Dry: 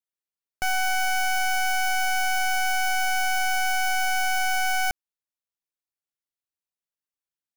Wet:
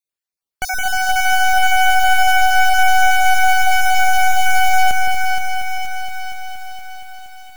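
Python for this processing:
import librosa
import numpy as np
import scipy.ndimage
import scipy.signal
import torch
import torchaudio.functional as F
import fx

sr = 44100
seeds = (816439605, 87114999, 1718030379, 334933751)

p1 = fx.spec_dropout(x, sr, seeds[0], share_pct=28)
p2 = p1 + fx.echo_split(p1, sr, split_hz=1100.0, low_ms=165, high_ms=475, feedback_pct=52, wet_db=-7, dry=0)
p3 = fx.echo_crushed(p2, sr, ms=235, feedback_pct=80, bits=8, wet_db=-9)
y = F.gain(torch.from_numpy(p3), 5.5).numpy()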